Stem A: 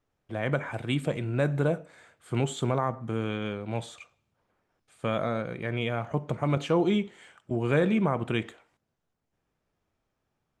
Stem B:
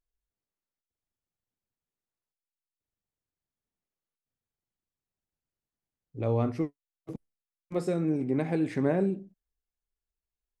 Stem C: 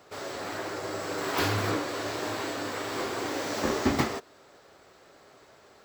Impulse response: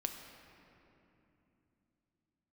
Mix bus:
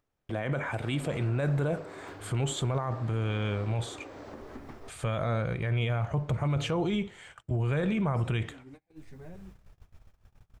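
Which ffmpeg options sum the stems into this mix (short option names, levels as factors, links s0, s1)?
-filter_complex "[0:a]asubboost=boost=8:cutoff=88,acompressor=mode=upward:threshold=0.0141:ratio=2.5,volume=1.41[s0];[1:a]firequalizer=gain_entry='entry(130,0);entry(330,-7);entry(4200,3)':delay=0.05:min_phase=1,asplit=2[s1][s2];[s2]adelay=9.1,afreqshift=1[s3];[s1][s3]amix=inputs=2:normalize=1,adelay=350,volume=0.211[s4];[2:a]lowpass=f=1000:p=1,acompressor=threshold=0.01:ratio=16,adelay=700,volume=0.841[s5];[s0][s4][s5]amix=inputs=3:normalize=0,agate=range=0.0355:threshold=0.00447:ratio=16:detection=peak,alimiter=limit=0.0841:level=0:latency=1:release=25"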